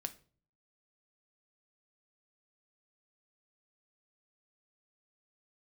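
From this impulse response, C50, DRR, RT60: 17.0 dB, 7.5 dB, 0.40 s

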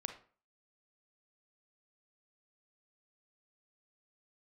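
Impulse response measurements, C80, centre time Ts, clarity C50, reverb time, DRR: 14.5 dB, 13 ms, 9.0 dB, 0.45 s, 6.0 dB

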